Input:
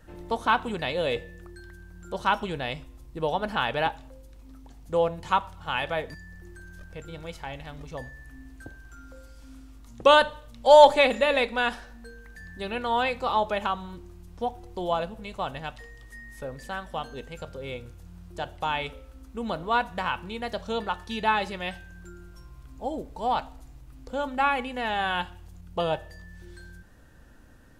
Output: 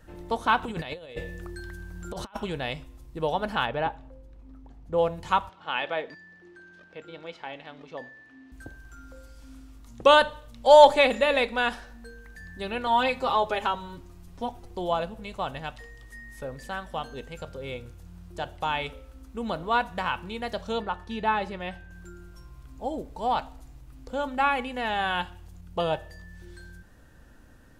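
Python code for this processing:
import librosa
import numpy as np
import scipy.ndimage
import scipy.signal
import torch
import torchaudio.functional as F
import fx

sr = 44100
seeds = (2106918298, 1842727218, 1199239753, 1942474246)

y = fx.over_compress(x, sr, threshold_db=-34.0, ratio=-0.5, at=(0.63, 2.37))
y = fx.lowpass(y, sr, hz=1200.0, slope=6, at=(3.65, 4.97), fade=0.02)
y = fx.cheby1_bandpass(y, sr, low_hz=280.0, high_hz=3600.0, order=2, at=(5.49, 8.52))
y = fx.comb(y, sr, ms=7.4, depth=0.72, at=(12.86, 14.71))
y = fx.high_shelf(y, sr, hz=2800.0, db=-11.0, at=(20.8, 21.91))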